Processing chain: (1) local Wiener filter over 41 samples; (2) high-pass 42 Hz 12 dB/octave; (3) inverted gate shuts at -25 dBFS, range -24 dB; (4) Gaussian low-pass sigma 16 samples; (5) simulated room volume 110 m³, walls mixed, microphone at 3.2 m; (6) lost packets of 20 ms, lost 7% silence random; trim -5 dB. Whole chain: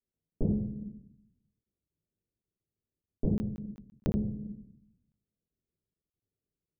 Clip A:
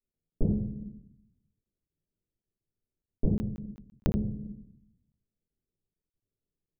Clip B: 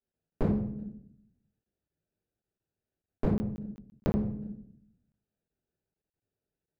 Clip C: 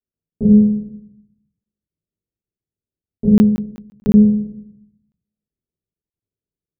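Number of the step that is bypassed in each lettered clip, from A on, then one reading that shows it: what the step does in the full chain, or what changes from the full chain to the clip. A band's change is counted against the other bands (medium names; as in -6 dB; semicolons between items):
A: 2, 1 kHz band +3.0 dB; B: 4, 1 kHz band +10.0 dB; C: 3, momentary loudness spread change -1 LU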